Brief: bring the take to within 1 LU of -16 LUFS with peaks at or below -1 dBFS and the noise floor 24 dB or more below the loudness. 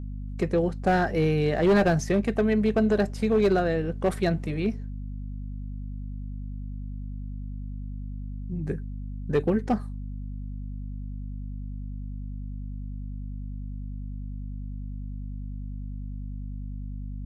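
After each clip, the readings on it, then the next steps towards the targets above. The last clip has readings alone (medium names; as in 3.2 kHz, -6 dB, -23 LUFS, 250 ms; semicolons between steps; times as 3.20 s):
clipped samples 0.6%; clipping level -15.5 dBFS; hum 50 Hz; highest harmonic 250 Hz; hum level -32 dBFS; loudness -29.0 LUFS; peak level -15.5 dBFS; loudness target -16.0 LUFS
-> clip repair -15.5 dBFS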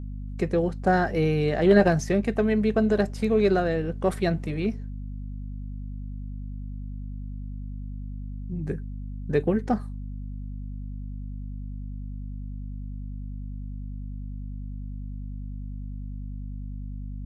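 clipped samples 0.0%; hum 50 Hz; highest harmonic 250 Hz; hum level -32 dBFS
-> de-hum 50 Hz, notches 5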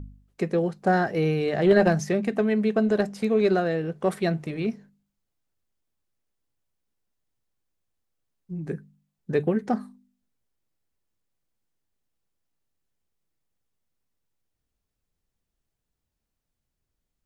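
hum not found; loudness -24.5 LUFS; peak level -7.5 dBFS; loudness target -16.0 LUFS
-> trim +8.5 dB; peak limiter -1 dBFS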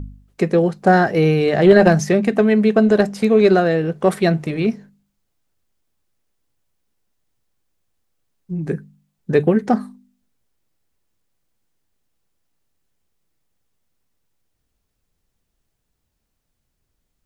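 loudness -16.0 LUFS; peak level -1.0 dBFS; noise floor -74 dBFS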